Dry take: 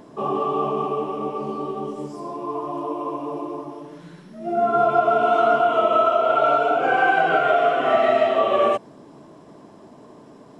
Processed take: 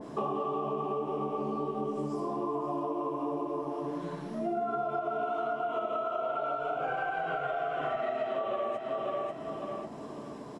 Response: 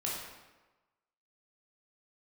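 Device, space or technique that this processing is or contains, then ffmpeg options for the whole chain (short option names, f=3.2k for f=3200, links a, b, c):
serial compression, leveller first: -filter_complex "[0:a]asplit=3[a][b][c];[a]afade=t=out:st=6.58:d=0.02[d];[b]asubboost=boost=8:cutoff=92,afade=t=in:st=6.58:d=0.02,afade=t=out:st=8:d=0.02[e];[c]afade=t=in:st=8:d=0.02[f];[d][e][f]amix=inputs=3:normalize=0,asplit=2[g][h];[h]adelay=14,volume=-12dB[i];[g][i]amix=inputs=2:normalize=0,aecho=1:1:543|1086|1629:0.282|0.0705|0.0176,acompressor=threshold=-20dB:ratio=2.5,acompressor=threshold=-32dB:ratio=6,adynamicequalizer=threshold=0.00447:dfrequency=1600:dqfactor=0.7:tfrequency=1600:tqfactor=0.7:attack=5:release=100:ratio=0.375:range=2:mode=cutabove:tftype=highshelf,volume=2dB"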